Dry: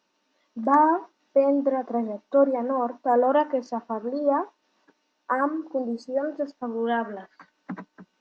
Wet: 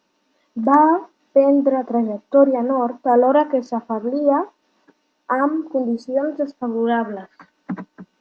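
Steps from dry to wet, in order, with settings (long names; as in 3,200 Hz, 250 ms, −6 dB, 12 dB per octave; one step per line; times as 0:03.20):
low-shelf EQ 470 Hz +6 dB
level +3.5 dB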